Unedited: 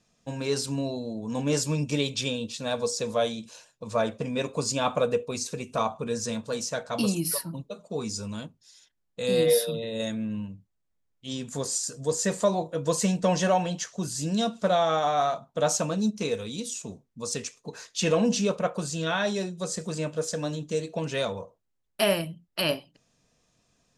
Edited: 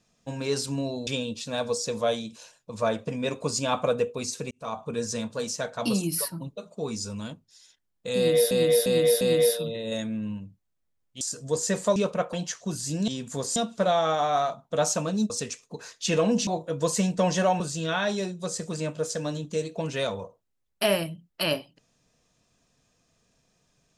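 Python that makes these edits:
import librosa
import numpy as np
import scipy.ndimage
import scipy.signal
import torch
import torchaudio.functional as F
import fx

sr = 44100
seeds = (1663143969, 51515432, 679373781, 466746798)

y = fx.edit(x, sr, fx.cut(start_s=1.07, length_s=1.13),
    fx.fade_in_span(start_s=5.64, length_s=0.41),
    fx.repeat(start_s=9.29, length_s=0.35, count=4),
    fx.move(start_s=11.29, length_s=0.48, to_s=14.4),
    fx.swap(start_s=12.52, length_s=1.13, other_s=18.41, other_length_s=0.37),
    fx.cut(start_s=16.14, length_s=1.1), tone=tone)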